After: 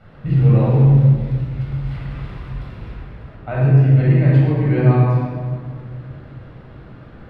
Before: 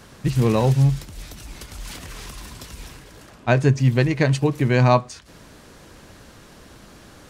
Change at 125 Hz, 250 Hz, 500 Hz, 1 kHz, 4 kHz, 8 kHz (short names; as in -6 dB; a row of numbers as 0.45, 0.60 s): +7.5 dB, +4.0 dB, -1.0 dB, -3.5 dB, under -10 dB, under -25 dB